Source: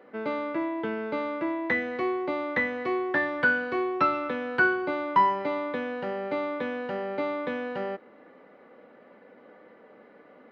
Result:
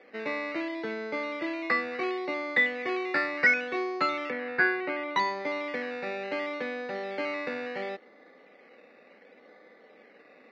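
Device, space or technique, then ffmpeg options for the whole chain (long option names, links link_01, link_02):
circuit-bent sampling toy: -filter_complex "[0:a]acrusher=samples=11:mix=1:aa=0.000001:lfo=1:lforange=6.6:lforate=0.7,highpass=590,equalizer=frequency=610:width_type=q:width=4:gain=-3,equalizer=frequency=970:width_type=q:width=4:gain=-9,equalizer=frequency=1400:width_type=q:width=4:gain=-6,equalizer=frequency=2100:width_type=q:width=4:gain=7,equalizer=frequency=3200:width_type=q:width=4:gain=-9,lowpass=frequency=4100:width=0.5412,lowpass=frequency=4100:width=1.3066,asettb=1/sr,asplit=3[link_01][link_02][link_03];[link_01]atrim=end=4.304[link_04];[link_02]atrim=start=4.3:end=5.16,asetpts=PTS-STARTPTS,afade=type=in:duration=0.004:curve=qsin,afade=type=out:start_time=0.856:duration=0.004:curve=qsin,lowpass=2900[link_05];[link_03]atrim=start=5.156[link_06];[link_04][link_05]acrossfade=duration=0.004:curve1=hsin:curve2=qsin[link_07];[link_07][link_06]acrossfade=duration=0.004:curve1=qsin:curve2=hsin,bass=frequency=250:gain=15,treble=frequency=4000:gain=-9,volume=2.5dB"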